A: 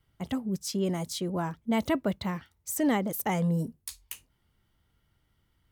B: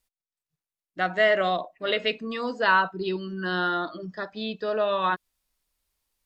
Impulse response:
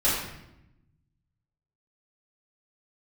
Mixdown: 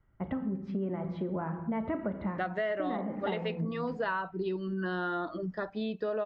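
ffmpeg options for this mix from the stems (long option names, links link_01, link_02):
-filter_complex "[0:a]lowpass=frequency=1900:width=0.5412,lowpass=frequency=1900:width=1.3066,volume=0.5dB,asplit=2[link_01][link_02];[link_02]volume=-19dB[link_03];[1:a]lowpass=frequency=1100:poles=1,adelay=1400,volume=2.5dB[link_04];[2:a]atrim=start_sample=2205[link_05];[link_03][link_05]afir=irnorm=-1:irlink=0[link_06];[link_01][link_04][link_06]amix=inputs=3:normalize=0,acompressor=threshold=-30dB:ratio=6"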